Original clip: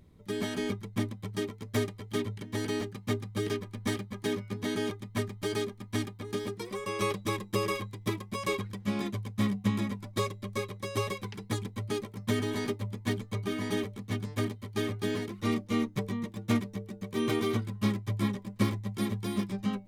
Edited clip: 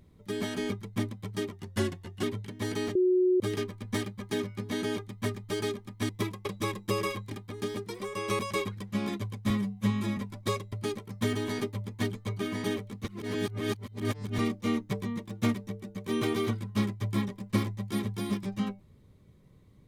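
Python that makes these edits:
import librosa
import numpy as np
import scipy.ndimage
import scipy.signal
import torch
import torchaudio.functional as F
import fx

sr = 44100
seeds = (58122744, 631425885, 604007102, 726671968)

y = fx.edit(x, sr, fx.speed_span(start_s=1.52, length_s=0.64, speed=0.9),
    fx.bleep(start_s=2.88, length_s=0.45, hz=366.0, db=-20.5),
    fx.swap(start_s=6.02, length_s=1.08, other_s=7.96, other_length_s=0.36),
    fx.stretch_span(start_s=9.43, length_s=0.45, factor=1.5),
    fx.cut(start_s=10.43, length_s=1.36),
    fx.reverse_span(start_s=14.11, length_s=1.34), tone=tone)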